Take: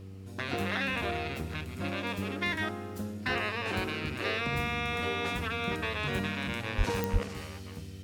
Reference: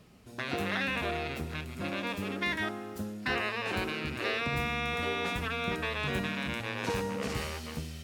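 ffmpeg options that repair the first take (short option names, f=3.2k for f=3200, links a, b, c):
-filter_complex "[0:a]adeclick=t=4,bandreject=f=96:t=h:w=4,bandreject=f=192:t=h:w=4,bandreject=f=288:t=h:w=4,bandreject=f=384:t=h:w=4,bandreject=f=480:t=h:w=4,asplit=3[a][b][c];[a]afade=t=out:st=6.77:d=0.02[d];[b]highpass=f=140:w=0.5412,highpass=f=140:w=1.3066,afade=t=in:st=6.77:d=0.02,afade=t=out:st=6.89:d=0.02[e];[c]afade=t=in:st=6.89:d=0.02[f];[d][e][f]amix=inputs=3:normalize=0,asplit=3[g][h][i];[g]afade=t=out:st=7.12:d=0.02[j];[h]highpass=f=140:w=0.5412,highpass=f=140:w=1.3066,afade=t=in:st=7.12:d=0.02,afade=t=out:st=7.24:d=0.02[k];[i]afade=t=in:st=7.24:d=0.02[l];[j][k][l]amix=inputs=3:normalize=0,asetnsamples=n=441:p=0,asendcmd='7.23 volume volume 7dB',volume=0dB"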